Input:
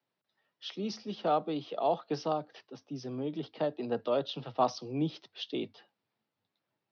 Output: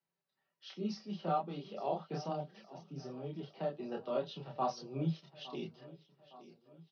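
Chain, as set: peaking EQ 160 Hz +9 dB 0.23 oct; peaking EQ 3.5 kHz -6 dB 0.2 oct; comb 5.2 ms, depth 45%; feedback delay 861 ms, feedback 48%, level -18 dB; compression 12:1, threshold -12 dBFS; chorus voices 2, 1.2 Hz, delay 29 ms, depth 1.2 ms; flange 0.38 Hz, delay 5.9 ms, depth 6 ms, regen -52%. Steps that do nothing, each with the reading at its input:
compression, threshold -12 dBFS: peak at its input -13.5 dBFS

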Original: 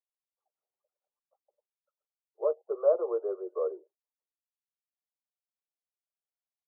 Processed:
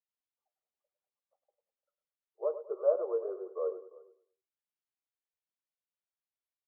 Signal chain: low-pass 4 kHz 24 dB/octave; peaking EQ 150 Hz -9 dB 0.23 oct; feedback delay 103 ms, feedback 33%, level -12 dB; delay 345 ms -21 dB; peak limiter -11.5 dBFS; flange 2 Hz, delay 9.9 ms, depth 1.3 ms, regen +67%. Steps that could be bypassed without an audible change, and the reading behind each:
low-pass 4 kHz: input has nothing above 1.3 kHz; peaking EQ 150 Hz: input has nothing below 320 Hz; peak limiter -11.5 dBFS: peak at its input -13.5 dBFS

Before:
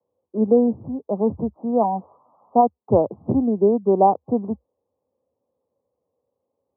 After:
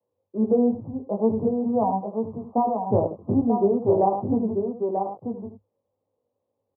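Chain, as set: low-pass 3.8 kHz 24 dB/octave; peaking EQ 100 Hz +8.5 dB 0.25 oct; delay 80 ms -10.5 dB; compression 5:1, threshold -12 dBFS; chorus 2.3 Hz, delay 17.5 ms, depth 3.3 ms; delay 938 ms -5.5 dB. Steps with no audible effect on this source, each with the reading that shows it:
low-pass 3.8 kHz: input has nothing above 1 kHz

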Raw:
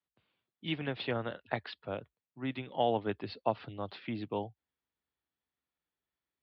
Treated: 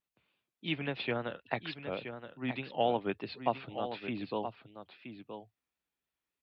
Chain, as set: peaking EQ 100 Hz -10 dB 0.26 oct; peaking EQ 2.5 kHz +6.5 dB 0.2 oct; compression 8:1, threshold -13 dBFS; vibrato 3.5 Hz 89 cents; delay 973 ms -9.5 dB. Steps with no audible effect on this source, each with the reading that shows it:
compression, threshold -13 dBFS: peak at its input -15.0 dBFS

